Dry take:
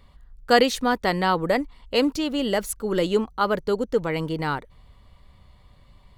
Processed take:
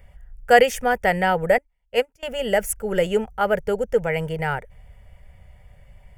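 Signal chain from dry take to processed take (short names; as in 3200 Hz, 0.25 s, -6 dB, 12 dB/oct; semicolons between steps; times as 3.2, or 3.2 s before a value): fixed phaser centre 1100 Hz, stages 6; 1.58–2.23 upward expander 2.5:1, over -39 dBFS; gain +5.5 dB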